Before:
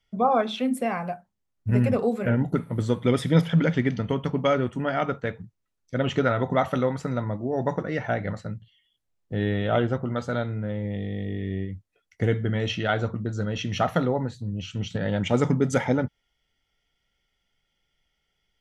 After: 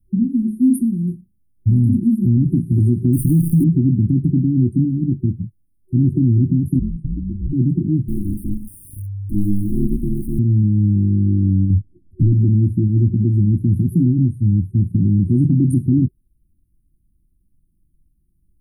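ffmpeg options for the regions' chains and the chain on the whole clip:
ffmpeg -i in.wav -filter_complex "[0:a]asettb=1/sr,asplit=3[link_01][link_02][link_03];[link_01]atrim=end=3.134[link_04];[link_02]atrim=start=3.13:end=3.64,asetpts=PTS-STARTPTS,afade=type=in:duration=0.004:curve=qsin,afade=type=out:start_time=0.506:duration=0.004:curve=qsin,equalizer=frequency=5600:width_type=o:width=0.53:gain=13,acrusher=bits=6:dc=4:mix=0:aa=0.000001[link_05];[link_03]atrim=start=3.636[link_06];[link_04][link_05]acrossfade=duration=0.004:curve1=hsin:curve2=qsin[link_07];[link_07][link_06]acrossfade=duration=0.004:curve1=qsin:curve2=hsin,asettb=1/sr,asplit=3[link_08][link_09][link_10];[link_08]atrim=end=6.794[link_11];[link_09]atrim=start=6.79:end=7.53,asetpts=PTS-STARTPTS,afade=type=in:duration=0.004:curve=qsin,afade=type=out:start_time=0.736:duration=0.004:curve=qsin,lowpass=2700,aeval=exprs='val(0)*sin(2*PI*300*n/s)':channel_layout=same,acompressor=threshold=-34dB:ratio=2:attack=3.2:release=140:knee=1:detection=peak[link_12];[link_10]atrim=start=7.526[link_13];[link_11][link_12]acrossfade=duration=0.004:curve1=hsin:curve2=qsin[link_14];[link_14][link_13]acrossfade=duration=0.004:curve1=qsin:curve2=hsin,asettb=1/sr,asplit=3[link_15][link_16][link_17];[link_15]atrim=end=8.084[link_18];[link_16]atrim=start=8.08:end=10.39,asetpts=PTS-STARTPTS,afade=type=in:duration=0.004:curve=qsin,afade=type=out:start_time=2.306:duration=0.004:curve=qsin,aeval=exprs='val(0)+0.5*0.0188*sgn(val(0))':channel_layout=same,equalizer=frequency=240:width_type=o:width=2.3:gain=-5,aeval=exprs='val(0)*sin(2*PI*99*n/s)':channel_layout=same[link_19];[link_17]atrim=start=10.386[link_20];[link_18][link_19]acrossfade=duration=0.004:curve1=hsin:curve2=qsin[link_21];[link_21][link_20]acrossfade=duration=0.004:curve1=qsin:curve2=hsin,asettb=1/sr,asplit=3[link_22][link_23][link_24];[link_22]atrim=end=11.704[link_25];[link_23]atrim=start=11.7:end=12.33,asetpts=PTS-STARTPTS,afade=type=in:duration=0.004:curve=qsin,afade=type=out:start_time=0.626:duration=0.004:curve=qsin,aemphasis=mode=reproduction:type=riaa,acompressor=threshold=-31dB:ratio=2:attack=3.2:release=140:knee=1:detection=peak,asplit=2[link_26][link_27];[link_27]highpass=frequency=720:poles=1,volume=25dB,asoftclip=type=tanh:threshold=-16dB[link_28];[link_26][link_28]amix=inputs=2:normalize=0,lowpass=frequency=2400:poles=1,volume=-6dB[link_29];[link_24]atrim=start=12.326[link_30];[link_25][link_29]acrossfade=duration=0.004:curve1=hsin:curve2=qsin[link_31];[link_31][link_30]acrossfade=duration=0.004:curve1=qsin:curve2=hsin,lowshelf=frequency=210:gain=9,afftfilt=real='re*(1-between(b*sr/4096,370,8600))':imag='im*(1-between(b*sr/4096,370,8600))':win_size=4096:overlap=0.75,alimiter=level_in=16dB:limit=-1dB:release=50:level=0:latency=1,volume=-6.5dB" out.wav

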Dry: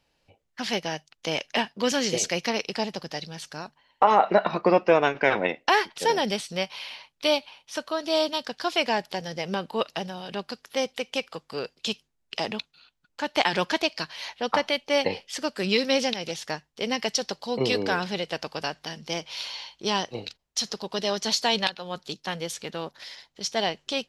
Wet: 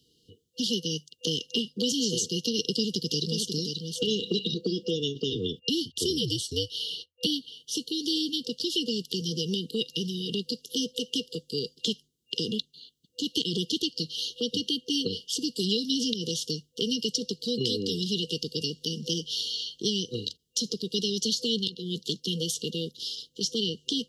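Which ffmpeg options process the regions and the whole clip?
ffmpeg -i in.wav -filter_complex "[0:a]asettb=1/sr,asplit=3[link_01][link_02][link_03];[link_01]atrim=end=2.584[link_04];[link_02]atrim=start=2.58:end=4.54,asetpts=PTS-STARTPTS,afade=type=in:duration=0.004:curve=qsin,afade=type=out:start_time=1.956:duration=0.004:curve=qsin,acontrast=75,aecho=1:1:535:0.282,atrim=end_sample=86436[link_05];[link_03]atrim=start=4.536[link_06];[link_04][link_05]acrossfade=duration=0.004:curve1=hsin:curve2=qsin[link_07];[link_07][link_06]acrossfade=duration=0.004:curve1=qsin:curve2=hsin,asettb=1/sr,asplit=3[link_08][link_09][link_10];[link_08]atrim=end=5.324[link_11];[link_09]atrim=start=5.32:end=7.26,asetpts=PTS-STARTPTS,afade=type=in:duration=0.004:curve=qsin,afade=type=out:start_time=1.936:duration=0.004:curve=qsin,agate=range=-24dB:threshold=-47dB:ratio=16:release=100:detection=peak,afreqshift=-86[link_12];[link_10]atrim=start=7.256[link_13];[link_11][link_12]acrossfade=duration=0.004:curve1=hsin:curve2=qsin[link_14];[link_14][link_13]acrossfade=duration=0.004:curve1=qsin:curve2=hsin,afftfilt=real='re*(1-between(b*sr/4096,500,2800))':imag='im*(1-between(b*sr/4096,500,2800))':win_size=4096:overlap=0.75,acrossover=split=210|1200[link_15][link_16][link_17];[link_15]acompressor=threshold=-42dB:ratio=4[link_18];[link_16]acompressor=threshold=-43dB:ratio=4[link_19];[link_17]acompressor=threshold=-37dB:ratio=4[link_20];[link_18][link_19][link_20]amix=inputs=3:normalize=0,highpass=97,volume=8.5dB" out.wav

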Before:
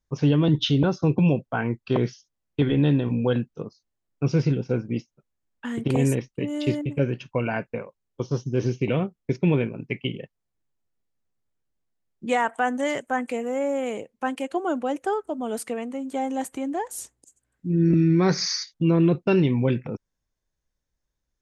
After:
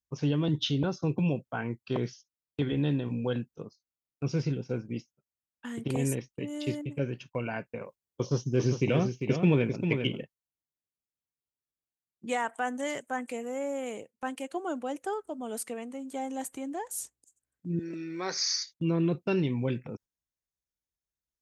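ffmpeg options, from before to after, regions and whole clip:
ffmpeg -i in.wav -filter_complex "[0:a]asettb=1/sr,asplit=3[link_01][link_02][link_03];[link_01]atrim=end=7.814[link_04];[link_02]atrim=start=7.81:end=10.23,asetpts=PTS-STARTPTS,afade=type=in:duration=0.004:curve=qsin,afade=type=out:start_time=2.416:duration=0.004:curve=qsin,acontrast=45,aecho=1:1:398:0.473,atrim=end_sample=106722[link_05];[link_03]atrim=start=10.226[link_06];[link_04][link_05]acrossfade=duration=0.004:curve1=hsin:curve2=qsin[link_07];[link_07][link_06]acrossfade=duration=0.004:curve1=qsin:curve2=hsin,asettb=1/sr,asplit=3[link_08][link_09][link_10];[link_08]atrim=end=17.794[link_11];[link_09]atrim=start=17.79:end=18.71,asetpts=PTS-STARTPTS,afade=type=in:duration=0.004:curve=qsin,afade=type=out:start_time=0.916:duration=0.004:curve=qsin,highpass=500,highshelf=frequency=8000:gain=4.5[link_12];[link_10]atrim=start=18.706[link_13];[link_11][link_12]acrossfade=duration=0.004:curve1=hsin:curve2=qsin[link_14];[link_14][link_13]acrossfade=duration=0.004:curve1=qsin:curve2=hsin,highpass=45,agate=range=-7dB:threshold=-42dB:ratio=16:detection=peak,highshelf=frequency=5500:gain=9.5,volume=-8dB" out.wav

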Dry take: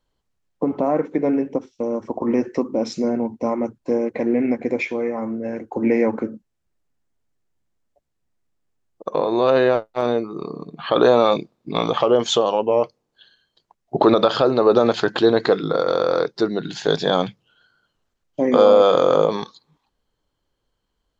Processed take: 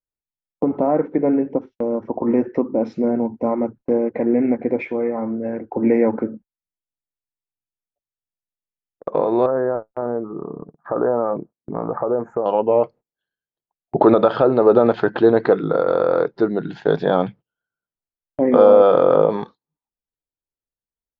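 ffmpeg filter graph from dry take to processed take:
ffmpeg -i in.wav -filter_complex "[0:a]asettb=1/sr,asplit=3[link_01][link_02][link_03];[link_01]atrim=end=9.464[link_04];[link_02]atrim=start=9.46:end=12.46,asetpts=PTS-STARTPTS,afade=type=in:duration=0.004:curve=qsin,afade=type=out:start_time=2.996:duration=0.004:curve=qsin,acompressor=threshold=-28dB:ratio=1.5:attack=3.2:release=140:knee=1:detection=peak,agate=range=-7dB:threshold=-35dB:ratio=16:release=100:detection=peak,asuperstop=centerf=3800:order=8:qfactor=0.57[link_05];[link_03]atrim=start=12.456[link_06];[link_04][link_05]acrossfade=duration=0.004:curve1=hsin:curve2=qsin[link_07];[link_07][link_06]acrossfade=duration=0.004:curve1=qsin:curve2=hsin,lowpass=1600,bandreject=frequency=1100:width=11,agate=range=-26dB:threshold=-39dB:ratio=16:detection=peak,volume=2dB" out.wav

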